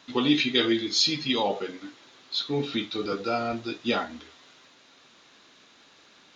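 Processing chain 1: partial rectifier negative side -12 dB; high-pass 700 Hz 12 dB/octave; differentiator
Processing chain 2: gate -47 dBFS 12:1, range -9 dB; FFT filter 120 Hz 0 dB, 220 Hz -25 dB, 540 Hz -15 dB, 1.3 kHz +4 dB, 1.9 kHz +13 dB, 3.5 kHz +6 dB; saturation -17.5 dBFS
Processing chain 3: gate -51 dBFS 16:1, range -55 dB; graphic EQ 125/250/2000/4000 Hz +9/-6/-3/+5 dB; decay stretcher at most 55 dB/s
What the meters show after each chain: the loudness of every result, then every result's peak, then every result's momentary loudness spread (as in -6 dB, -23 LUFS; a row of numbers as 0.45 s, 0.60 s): -37.0 LUFS, -25.0 LUFS, -23.5 LUFS; -15.5 dBFS, -17.5 dBFS, -6.5 dBFS; 18 LU, 14 LU, 16 LU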